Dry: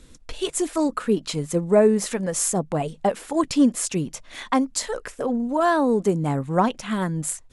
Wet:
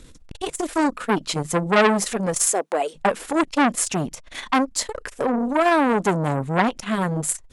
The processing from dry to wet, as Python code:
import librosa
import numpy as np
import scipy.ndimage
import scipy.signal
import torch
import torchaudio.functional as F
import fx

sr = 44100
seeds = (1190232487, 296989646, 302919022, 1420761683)

y = fx.highpass(x, sr, hz=380.0, slope=24, at=(2.46, 2.94), fade=0.02)
y = fx.transformer_sat(y, sr, knee_hz=1800.0)
y = F.gain(torch.from_numpy(y), 5.0).numpy()